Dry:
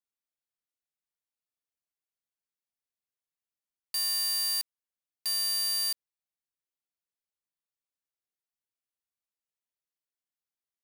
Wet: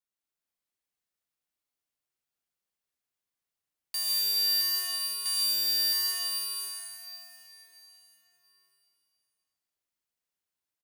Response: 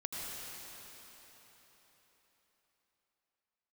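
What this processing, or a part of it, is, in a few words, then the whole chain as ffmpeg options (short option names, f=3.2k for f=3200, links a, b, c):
cave: -filter_complex "[0:a]aecho=1:1:238:0.251[a];[1:a]atrim=start_sample=2205[b];[a][b]afir=irnorm=-1:irlink=0,volume=2dB"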